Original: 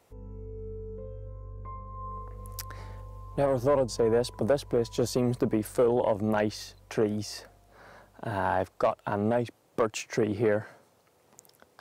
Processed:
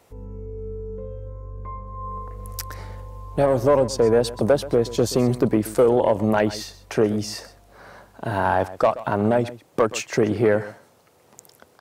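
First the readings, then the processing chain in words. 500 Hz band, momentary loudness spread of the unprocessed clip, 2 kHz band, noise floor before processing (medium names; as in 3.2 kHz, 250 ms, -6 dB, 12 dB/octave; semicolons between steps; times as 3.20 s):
+7.0 dB, 17 LU, +7.0 dB, -65 dBFS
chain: delay 128 ms -16.5 dB; trim +7 dB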